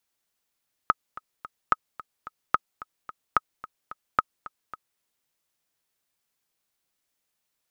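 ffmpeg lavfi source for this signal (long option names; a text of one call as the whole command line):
ffmpeg -f lavfi -i "aevalsrc='pow(10,(-5.5-18.5*gte(mod(t,3*60/219),60/219))/20)*sin(2*PI*1270*mod(t,60/219))*exp(-6.91*mod(t,60/219)/0.03)':duration=4.1:sample_rate=44100" out.wav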